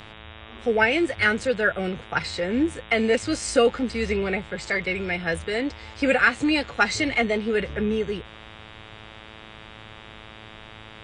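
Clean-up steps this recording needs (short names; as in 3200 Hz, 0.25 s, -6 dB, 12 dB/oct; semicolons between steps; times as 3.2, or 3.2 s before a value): de-hum 109 Hz, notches 35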